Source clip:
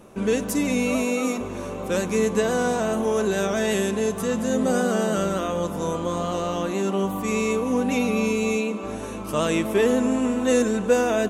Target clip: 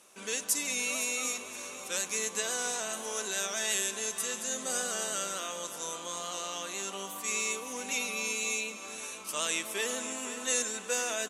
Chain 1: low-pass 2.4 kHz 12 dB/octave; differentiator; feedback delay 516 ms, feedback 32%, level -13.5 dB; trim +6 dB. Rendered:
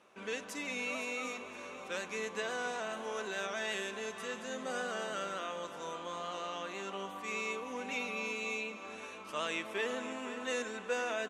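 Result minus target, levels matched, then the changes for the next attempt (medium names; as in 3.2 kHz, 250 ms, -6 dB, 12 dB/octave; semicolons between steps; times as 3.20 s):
8 kHz band -12.0 dB
change: low-pass 8.6 kHz 12 dB/octave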